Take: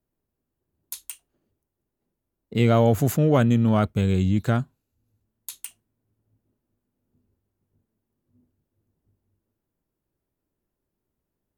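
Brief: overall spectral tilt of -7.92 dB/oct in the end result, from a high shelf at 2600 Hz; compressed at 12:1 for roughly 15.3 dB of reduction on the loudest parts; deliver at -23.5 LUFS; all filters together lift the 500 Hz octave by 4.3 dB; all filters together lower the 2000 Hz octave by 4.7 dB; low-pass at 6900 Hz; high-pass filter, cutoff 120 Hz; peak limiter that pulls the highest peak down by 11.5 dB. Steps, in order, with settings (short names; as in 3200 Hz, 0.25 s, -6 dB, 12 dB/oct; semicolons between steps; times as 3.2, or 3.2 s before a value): HPF 120 Hz; LPF 6900 Hz; bell 500 Hz +5.5 dB; bell 2000 Hz -5.5 dB; high shelf 2600 Hz -3 dB; compressor 12:1, threshold -27 dBFS; gain +17 dB; limiter -12.5 dBFS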